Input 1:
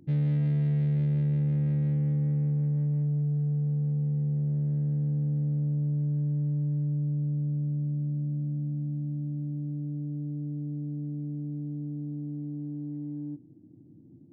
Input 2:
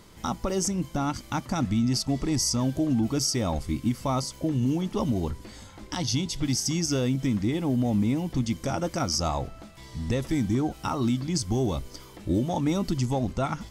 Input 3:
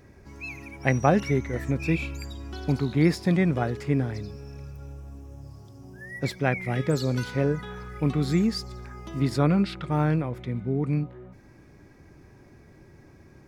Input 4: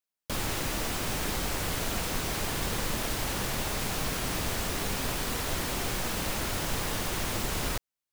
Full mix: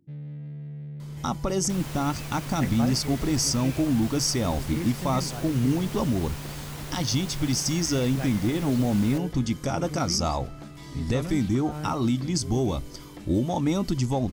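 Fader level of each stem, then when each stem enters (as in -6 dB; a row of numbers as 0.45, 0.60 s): -12.0, +1.0, -12.5, -8.5 dB; 0.00, 1.00, 1.75, 1.40 s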